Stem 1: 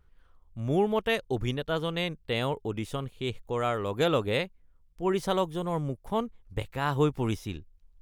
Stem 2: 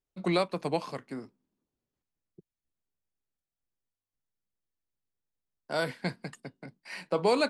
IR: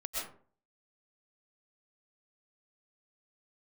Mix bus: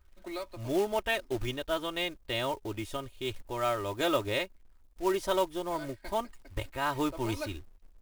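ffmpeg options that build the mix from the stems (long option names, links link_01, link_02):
-filter_complex "[0:a]equalizer=frequency=230:width=2.5:gain=-9.5,volume=-3dB,asplit=2[link_01][link_02];[1:a]highpass=290,volume=-13.5dB[link_03];[link_02]apad=whole_len=330656[link_04];[link_03][link_04]sidechaincompress=threshold=-35dB:ratio=8:attack=8:release=137[link_05];[link_01][link_05]amix=inputs=2:normalize=0,aecho=1:1:3.2:0.79,acrusher=bits=4:mode=log:mix=0:aa=0.000001"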